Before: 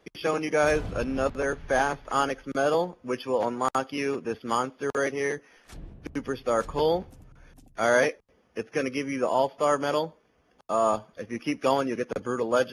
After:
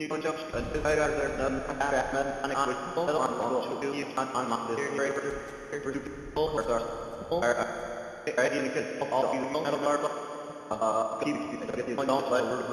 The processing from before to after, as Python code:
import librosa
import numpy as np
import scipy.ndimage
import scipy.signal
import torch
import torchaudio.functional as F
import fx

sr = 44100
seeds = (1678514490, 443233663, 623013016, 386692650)

y = fx.block_reorder(x, sr, ms=106.0, group=5)
y = fx.rev_schroeder(y, sr, rt60_s=3.3, comb_ms=27, drr_db=4.0)
y = y * librosa.db_to_amplitude(-3.5)